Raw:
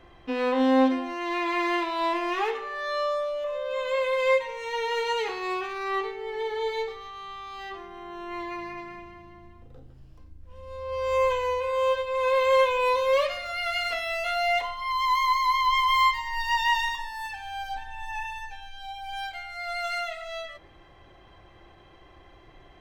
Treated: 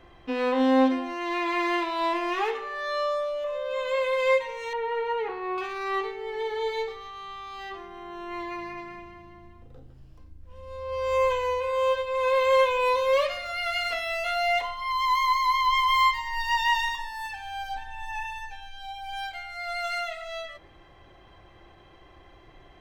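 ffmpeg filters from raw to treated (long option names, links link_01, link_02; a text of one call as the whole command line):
ffmpeg -i in.wav -filter_complex "[0:a]asettb=1/sr,asplit=3[link_01][link_02][link_03];[link_01]atrim=end=4.734[link_04];[link_02]atrim=start=4.73:end=5.58,asetpts=PTS-STARTPTS,afade=type=in:duration=0.004:curve=qsin,afade=type=out:start_time=0.846:duration=0.004:curve=qsin,lowpass=1600[link_05];[link_03]atrim=start=5.576[link_06];[link_04][link_05]acrossfade=duration=0.004:curve1=hsin:curve2=qsin[link_07];[link_07][link_06]acrossfade=duration=0.004:curve1=qsin:curve2=hsin" out.wav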